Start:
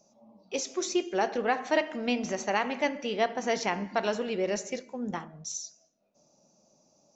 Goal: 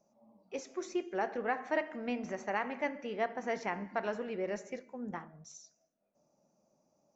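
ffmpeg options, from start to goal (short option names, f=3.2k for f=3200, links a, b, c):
-af "highshelf=f=2.6k:t=q:w=1.5:g=-8,volume=-7dB"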